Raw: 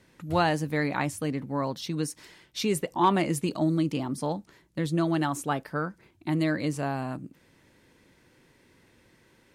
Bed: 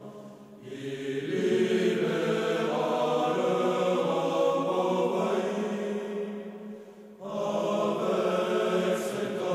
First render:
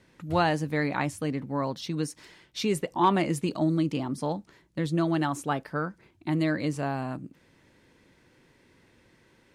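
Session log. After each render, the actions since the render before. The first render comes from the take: high shelf 11000 Hz -10.5 dB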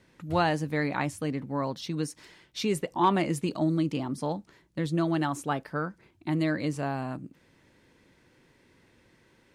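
gain -1 dB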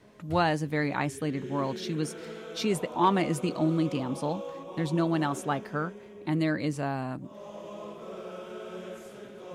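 add bed -14 dB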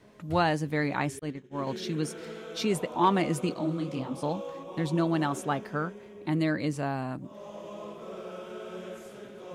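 1.19–1.67 expander -25 dBFS; 3.54–4.23 detuned doubles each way 60 cents

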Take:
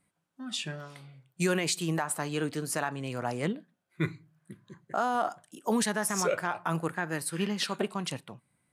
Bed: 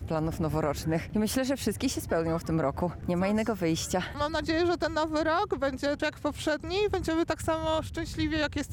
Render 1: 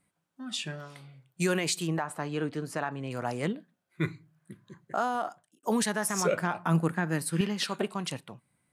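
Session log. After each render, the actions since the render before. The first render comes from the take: 1.87–3.11 LPF 2200 Hz 6 dB/oct; 5.02–5.63 fade out; 6.25–7.41 bell 200 Hz +10 dB 1.1 oct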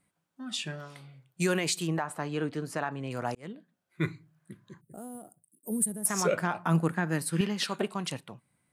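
3.35–4.06 fade in equal-power; 4.81–6.06 EQ curve 150 Hz 0 dB, 490 Hz -10 dB, 1100 Hz -29 dB, 6200 Hz -24 dB, 8700 Hz +9 dB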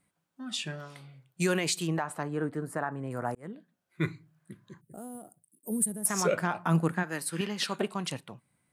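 2.23–3.53 band shelf 3900 Hz -13.5 dB; 7.02–7.58 HPF 760 Hz -> 220 Hz 6 dB/oct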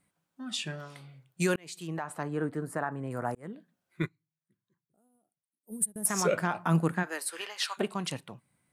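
1.56–2.28 fade in linear; 4.02–5.96 upward expander 2.5:1, over -42 dBFS; 7.05–7.77 HPF 300 Hz -> 860 Hz 24 dB/oct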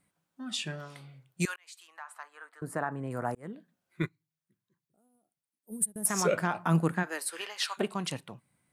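1.45–2.62 ladder high-pass 870 Hz, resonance 30%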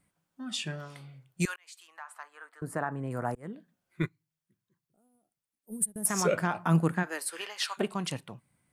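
low shelf 74 Hz +9 dB; notch 3900 Hz, Q 27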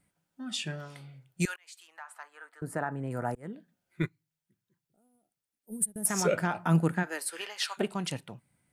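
notch 1100 Hz, Q 7.9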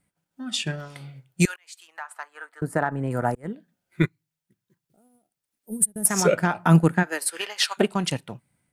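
transient shaper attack +2 dB, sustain -6 dB; AGC gain up to 8 dB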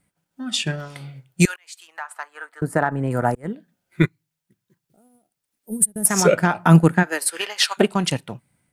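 gain +4 dB; limiter -1 dBFS, peak gain reduction 2 dB

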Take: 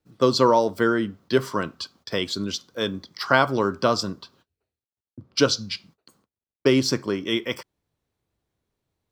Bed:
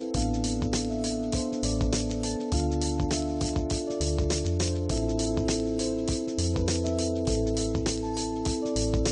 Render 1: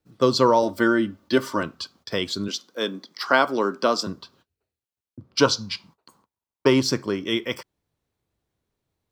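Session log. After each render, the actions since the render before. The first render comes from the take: 0.62–1.63 comb 3.4 ms; 2.48–4.07 HPF 210 Hz 24 dB/oct; 5.39–6.82 bell 960 Hz +12.5 dB 0.53 oct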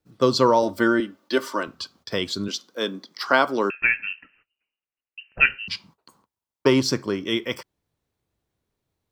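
1–1.68 HPF 320 Hz; 3.7–5.68 inverted band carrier 2900 Hz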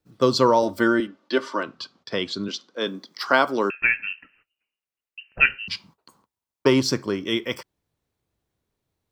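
1.07–2.87 BPF 130–4900 Hz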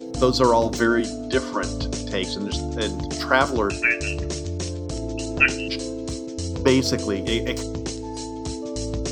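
add bed -1.5 dB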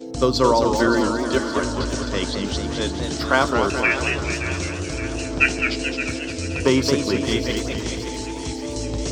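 thinning echo 0.57 s, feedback 64%, high-pass 700 Hz, level -10.5 dB; warbling echo 0.217 s, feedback 57%, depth 161 cents, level -6 dB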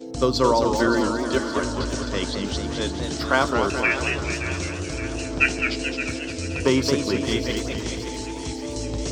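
gain -2 dB

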